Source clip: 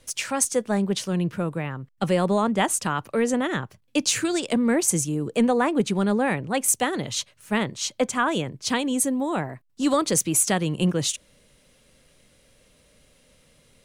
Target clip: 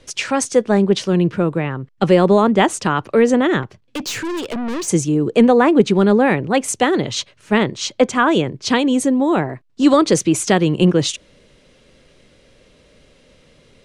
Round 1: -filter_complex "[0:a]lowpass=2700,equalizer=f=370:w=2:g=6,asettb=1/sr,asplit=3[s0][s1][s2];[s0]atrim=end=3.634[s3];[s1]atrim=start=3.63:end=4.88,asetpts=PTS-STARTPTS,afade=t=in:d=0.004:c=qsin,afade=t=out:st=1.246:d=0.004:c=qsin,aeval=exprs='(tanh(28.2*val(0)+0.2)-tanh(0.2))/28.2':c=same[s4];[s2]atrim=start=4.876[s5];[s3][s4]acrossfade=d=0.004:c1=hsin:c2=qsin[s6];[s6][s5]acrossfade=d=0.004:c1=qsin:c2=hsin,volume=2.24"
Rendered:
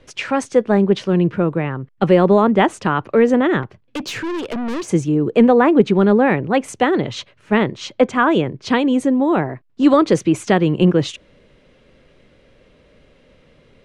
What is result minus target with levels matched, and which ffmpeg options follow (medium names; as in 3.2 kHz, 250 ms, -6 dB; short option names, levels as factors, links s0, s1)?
4 kHz band -5.0 dB
-filter_complex "[0:a]lowpass=5400,equalizer=f=370:w=2:g=6,asettb=1/sr,asplit=3[s0][s1][s2];[s0]atrim=end=3.634[s3];[s1]atrim=start=3.63:end=4.88,asetpts=PTS-STARTPTS,afade=t=in:d=0.004:c=qsin,afade=t=out:st=1.246:d=0.004:c=qsin,aeval=exprs='(tanh(28.2*val(0)+0.2)-tanh(0.2))/28.2':c=same[s4];[s2]atrim=start=4.876[s5];[s3][s4]acrossfade=d=0.004:c1=hsin:c2=qsin[s6];[s6][s5]acrossfade=d=0.004:c1=qsin:c2=hsin,volume=2.24"